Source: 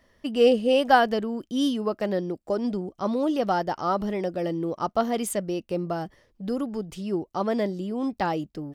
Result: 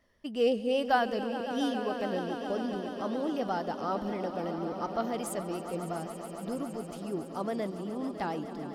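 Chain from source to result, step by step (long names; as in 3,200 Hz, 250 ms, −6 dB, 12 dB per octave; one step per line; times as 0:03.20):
echo that builds up and dies away 139 ms, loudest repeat 5, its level −14 dB
pitch vibrato 8.3 Hz 40 cents
level −8 dB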